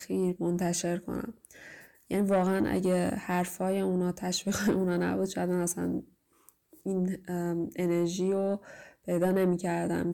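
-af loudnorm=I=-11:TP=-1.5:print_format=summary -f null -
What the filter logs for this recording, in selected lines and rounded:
Input Integrated:    -29.9 LUFS
Input True Peak:     -19.1 dBTP
Input LRA:             3.3 LU
Input Threshold:     -40.5 LUFS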